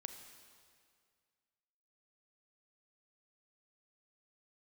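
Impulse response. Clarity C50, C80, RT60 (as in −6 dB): 7.0 dB, 8.0 dB, 2.1 s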